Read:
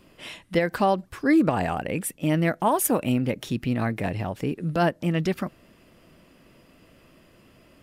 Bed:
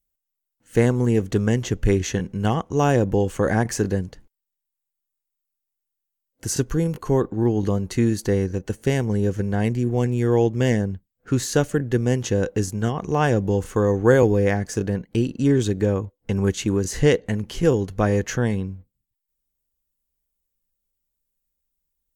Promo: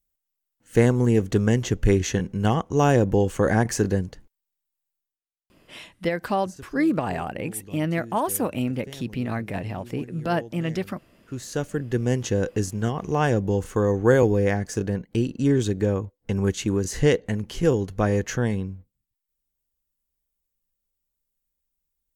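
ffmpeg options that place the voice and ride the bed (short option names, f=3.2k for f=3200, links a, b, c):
-filter_complex "[0:a]adelay=5500,volume=-2.5dB[a];[1:a]volume=19dB,afade=t=out:st=4.95:d=0.25:silence=0.0891251,afade=t=in:st=11.14:d=0.99:silence=0.112202[b];[a][b]amix=inputs=2:normalize=0"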